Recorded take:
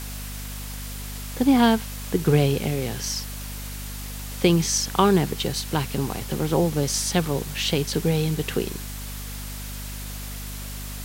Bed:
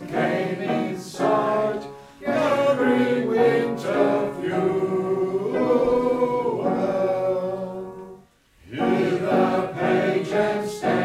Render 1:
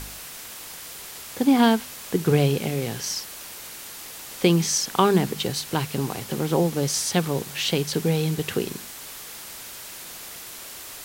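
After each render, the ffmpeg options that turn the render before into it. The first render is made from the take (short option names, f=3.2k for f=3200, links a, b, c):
-af "bandreject=f=50:t=h:w=4,bandreject=f=100:t=h:w=4,bandreject=f=150:t=h:w=4,bandreject=f=200:t=h:w=4,bandreject=f=250:t=h:w=4"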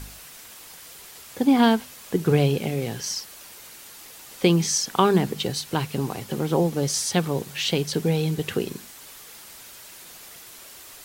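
-af "afftdn=nr=6:nf=-39"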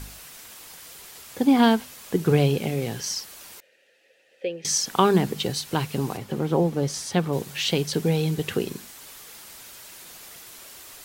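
-filter_complex "[0:a]asettb=1/sr,asplit=3[a][b][c];[a]atrim=end=3.604[d];[b]atrim=start=3.6:end=4.65,asetpts=PTS-STARTPTS,afade=t=in:d=0.004:c=qsin,afade=t=out:st=1.046:d=0.004:c=qsin,asplit=3[e][f][g];[e]bandpass=f=530:t=q:w=8,volume=0dB[h];[f]bandpass=f=1.84k:t=q:w=8,volume=-6dB[i];[g]bandpass=f=2.48k:t=q:w=8,volume=-9dB[j];[h][i][j]amix=inputs=3:normalize=0[k];[c]atrim=start=4.646[l];[d][k]acrossfade=d=0.004:c1=hsin:c2=qsin[m];[m][l]acrossfade=d=0.004:c1=qsin:c2=hsin,asettb=1/sr,asplit=3[n][o][p];[n]atrim=end=6.174[q];[o]atrim=start=6.17:end=7.33,asetpts=PTS-STARTPTS,afade=t=in:d=0.004:c=qsin,afade=t=out:st=1.156:d=0.004:c=qsin,highshelf=f=3.3k:g=-9[r];[p]atrim=start=7.326[s];[q][r]acrossfade=d=0.004:c1=hsin:c2=qsin[t];[t][s]acrossfade=d=0.004:c1=qsin:c2=hsin"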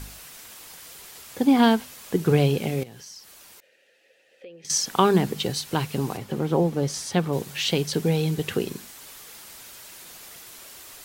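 -filter_complex "[0:a]asettb=1/sr,asplit=3[a][b][c];[a]atrim=end=2.834[d];[b]atrim=start=2.83:end=4.7,asetpts=PTS-STARTPTS,afade=t=in:d=0.004:c=qsin,afade=t=out:st=1.866:d=0.004:c=qsin,acompressor=threshold=-47dB:ratio=2.5:attack=3.2:release=140:knee=1:detection=peak[e];[c]atrim=start=4.696[f];[d][e]acrossfade=d=0.004:c1=hsin:c2=qsin[g];[g][f]acrossfade=d=0.004:c1=qsin:c2=hsin"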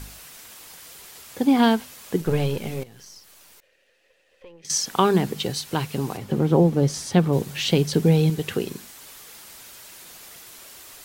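-filter_complex "[0:a]asettb=1/sr,asplit=3[a][b][c];[a]atrim=end=2.214[d];[b]atrim=start=2.21:end=4.63,asetpts=PTS-STARTPTS,afade=t=in:d=0.004:c=qsin,afade=t=out:st=2.416:d=0.004:c=qsin,aeval=exprs='if(lt(val(0),0),0.447*val(0),val(0))':c=same[e];[c]atrim=start=4.626[f];[d][e]acrossfade=d=0.004:c1=hsin:c2=qsin[g];[g][f]acrossfade=d=0.004:c1=qsin:c2=hsin,asettb=1/sr,asplit=3[h][i][j];[h]atrim=end=6.234[k];[i]atrim=start=6.23:end=8.3,asetpts=PTS-STARTPTS,afade=t=in:d=0.004:c=qsin,afade=t=out:st=2.066:d=0.004:c=qsin,lowshelf=f=450:g=7[l];[j]atrim=start=8.296[m];[k][l]acrossfade=d=0.004:c1=hsin:c2=qsin[n];[n][m]acrossfade=d=0.004:c1=qsin:c2=hsin"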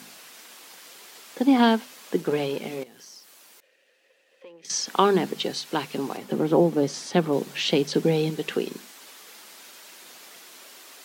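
-filter_complex "[0:a]acrossover=split=6500[a][b];[b]acompressor=threshold=-49dB:ratio=4:attack=1:release=60[c];[a][c]amix=inputs=2:normalize=0,highpass=f=210:w=0.5412,highpass=f=210:w=1.3066"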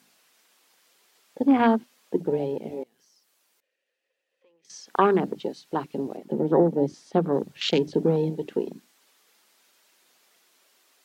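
-af "bandreject=f=60:t=h:w=6,bandreject=f=120:t=h:w=6,bandreject=f=180:t=h:w=6,bandreject=f=240:t=h:w=6,bandreject=f=300:t=h:w=6,afwtdn=0.0398"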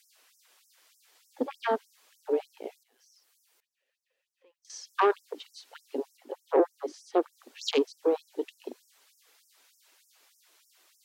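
-af "asoftclip=type=tanh:threshold=-12dB,afftfilt=real='re*gte(b*sr/1024,230*pow(5300/230,0.5+0.5*sin(2*PI*3.3*pts/sr)))':imag='im*gte(b*sr/1024,230*pow(5300/230,0.5+0.5*sin(2*PI*3.3*pts/sr)))':win_size=1024:overlap=0.75"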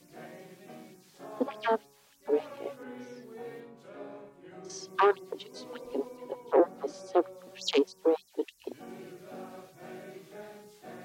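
-filter_complex "[1:a]volume=-25dB[a];[0:a][a]amix=inputs=2:normalize=0"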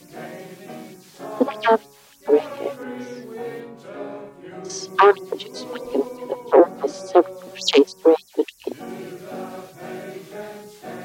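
-af "volume=11.5dB,alimiter=limit=-3dB:level=0:latency=1"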